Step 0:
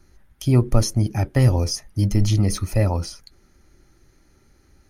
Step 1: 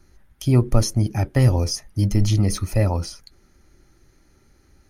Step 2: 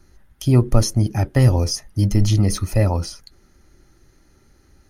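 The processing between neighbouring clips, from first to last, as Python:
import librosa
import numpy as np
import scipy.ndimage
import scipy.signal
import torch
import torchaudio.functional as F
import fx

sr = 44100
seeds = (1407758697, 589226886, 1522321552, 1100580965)

y1 = x
y2 = fx.notch(y1, sr, hz=2300.0, q=16.0)
y2 = F.gain(torch.from_numpy(y2), 2.0).numpy()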